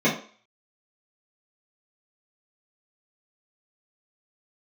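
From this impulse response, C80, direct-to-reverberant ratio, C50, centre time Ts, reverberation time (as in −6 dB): 12.5 dB, −9.5 dB, 8.0 dB, 25 ms, 0.45 s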